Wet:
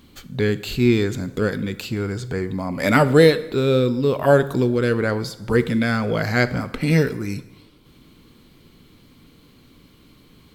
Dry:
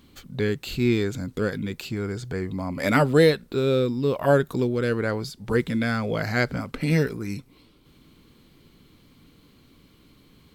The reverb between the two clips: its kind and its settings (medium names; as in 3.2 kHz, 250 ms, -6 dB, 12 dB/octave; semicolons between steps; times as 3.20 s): plate-style reverb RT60 0.98 s, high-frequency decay 0.8×, DRR 13 dB; trim +4 dB